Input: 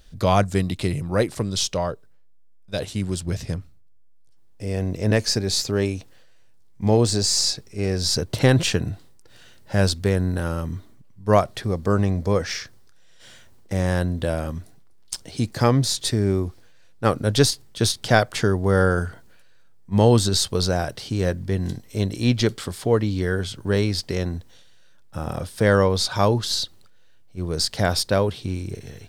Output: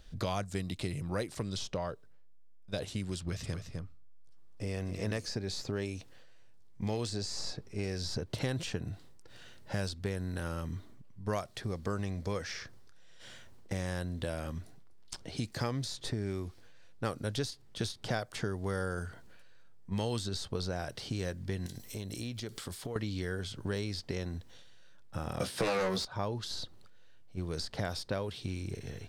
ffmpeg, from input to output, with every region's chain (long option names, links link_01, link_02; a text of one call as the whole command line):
ffmpeg -i in.wav -filter_complex "[0:a]asettb=1/sr,asplit=3[link_01][link_02][link_03];[link_01]atrim=end=3.184[link_04];[link_02]atrim=start=3.18:end=5.26,asetpts=PTS-STARTPTS,afade=type=in:duration=0.004:curve=qsin,afade=type=out:start_time=2.076:duration=0.004:curve=qsin,equalizer=frequency=1200:width_type=o:width=0.27:gain=7,aecho=1:1:254:0.355,atrim=end_sample=91728[link_05];[link_03]atrim=start=5.256[link_06];[link_04][link_05]acrossfade=duration=0.004:curve1=hsin:curve2=qsin[link_07];[link_07][link_06]acrossfade=duration=0.004:curve1=qsin:curve2=hsin,asettb=1/sr,asplit=3[link_08][link_09][link_10];[link_08]atrim=end=21.664[link_11];[link_09]atrim=start=21.66:end=22.96,asetpts=PTS-STARTPTS,afade=type=in:duration=0.004:curve=qsin,afade=type=out:start_time=1.296:duration=0.004:curve=qsin,aemphasis=mode=production:type=75kf,acompressor=threshold=-31dB:ratio=10:attack=3.2:release=140:knee=1:detection=peak[link_12];[link_10]atrim=start=22.956[link_13];[link_11][link_12]acrossfade=duration=0.004:curve1=hsin:curve2=qsin[link_14];[link_14][link_13]acrossfade=duration=0.004:curve1=qsin:curve2=hsin,asettb=1/sr,asplit=3[link_15][link_16][link_17];[link_15]atrim=end=25.404[link_18];[link_16]atrim=start=25.4:end=26.05,asetpts=PTS-STARTPTS,afade=type=in:duration=0.004:curve=qsin,afade=type=out:start_time=0.646:duration=0.004:curve=qsin,highpass=130,aeval=exprs='0.562*sin(PI/2*3.16*val(0)/0.562)':channel_layout=same,asplit=2[link_19][link_20];[link_20]adelay=16,volume=-3dB[link_21];[link_19][link_21]amix=inputs=2:normalize=0,atrim=end_sample=28665[link_22];[link_17]atrim=start=26.046[link_23];[link_18][link_22]acrossfade=duration=0.004:curve1=hsin:curve2=qsin[link_24];[link_24][link_23]acrossfade=duration=0.004:curve1=qsin:curve2=hsin,highshelf=frequency=7900:gain=-8,acrossover=split=1600|4600[link_25][link_26][link_27];[link_25]acompressor=threshold=-31dB:ratio=4[link_28];[link_26]acompressor=threshold=-43dB:ratio=4[link_29];[link_27]acompressor=threshold=-44dB:ratio=4[link_30];[link_28][link_29][link_30]amix=inputs=3:normalize=0,volume=-3dB" out.wav